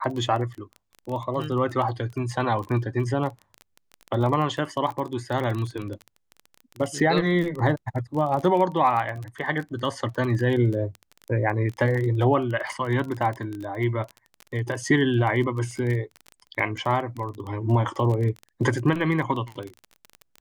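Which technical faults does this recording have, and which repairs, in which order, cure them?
crackle 23/s -29 dBFS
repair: de-click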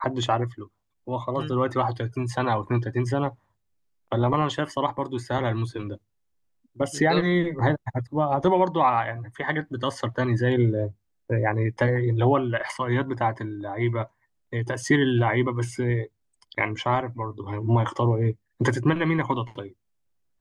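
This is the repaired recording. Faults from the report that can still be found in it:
none

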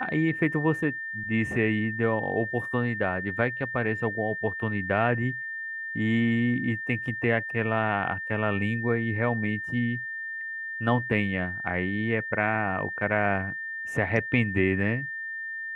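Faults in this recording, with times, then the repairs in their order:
tone 1800 Hz -32 dBFS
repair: notch 1800 Hz, Q 30

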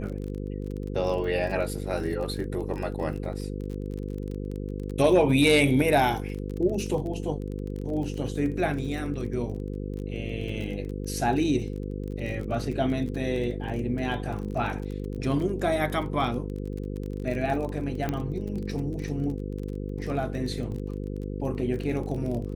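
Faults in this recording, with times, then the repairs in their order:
buzz 50 Hz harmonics 10 -33 dBFS
crackle 29/s -33 dBFS
18.09 pop -15 dBFS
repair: de-click; de-hum 50 Hz, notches 10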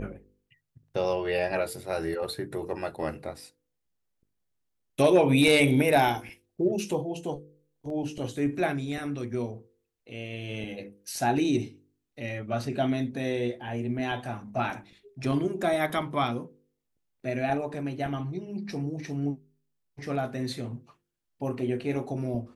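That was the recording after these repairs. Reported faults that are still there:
none

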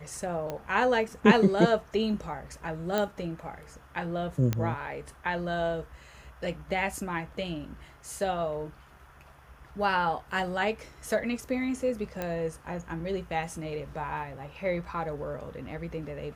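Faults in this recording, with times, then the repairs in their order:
0.5 pop -20 dBFS
2.98 pop -14 dBFS
4.53 pop -14 dBFS
12.22 pop -18 dBFS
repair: de-click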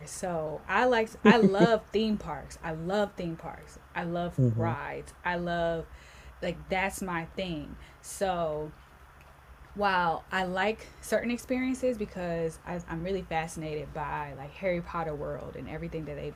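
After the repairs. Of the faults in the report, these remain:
0.5 pop

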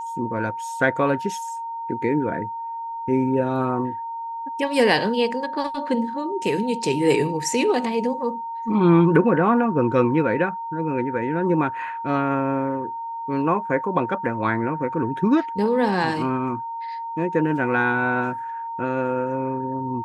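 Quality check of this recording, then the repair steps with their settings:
tone 920 Hz -28 dBFS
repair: notch 920 Hz, Q 30

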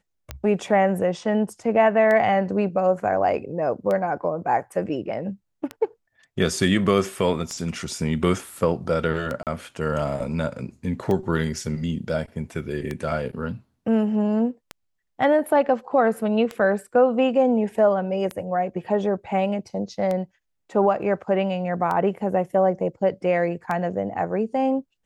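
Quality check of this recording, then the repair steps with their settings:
tick 33 1/3 rpm -15 dBFS
9.43–9.47 gap 38 ms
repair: de-click; interpolate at 9.43, 38 ms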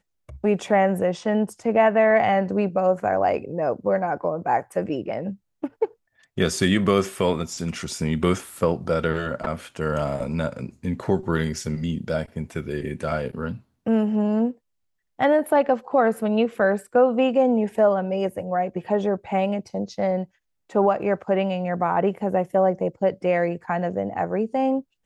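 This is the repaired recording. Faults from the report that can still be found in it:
none

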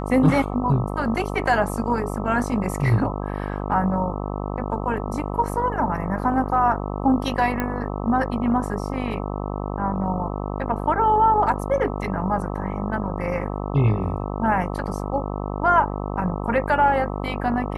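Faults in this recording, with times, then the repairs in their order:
buzz 50 Hz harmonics 26 -28 dBFS
7.6 pop -11 dBFS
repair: de-click; de-hum 50 Hz, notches 26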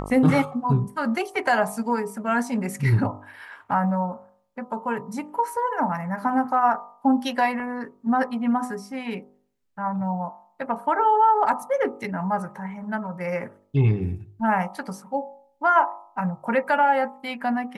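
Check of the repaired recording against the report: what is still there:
none

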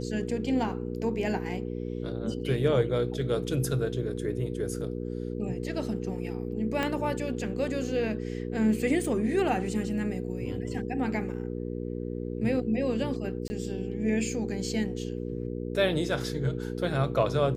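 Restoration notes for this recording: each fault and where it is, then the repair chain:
hum 60 Hz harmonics 8 -34 dBFS
6.83 pop -15 dBFS
13.48–13.5 gap 20 ms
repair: de-click; de-hum 60 Hz, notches 8; interpolate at 13.48, 20 ms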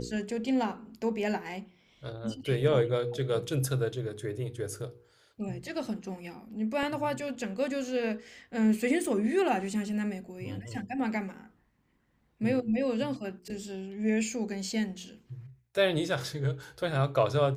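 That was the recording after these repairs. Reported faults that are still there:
6.83 pop

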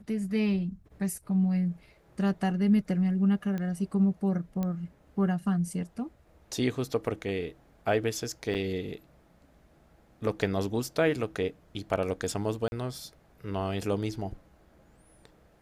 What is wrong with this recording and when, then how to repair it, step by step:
3.58 pop -23 dBFS
4.63 pop -20 dBFS
8.54–8.55 gap 8.4 ms
12.68–12.72 gap 41 ms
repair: de-click; interpolate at 8.54, 8.4 ms; interpolate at 12.68, 41 ms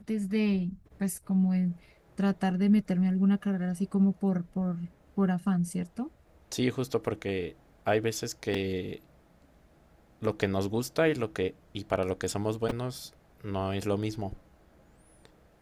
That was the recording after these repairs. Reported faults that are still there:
none

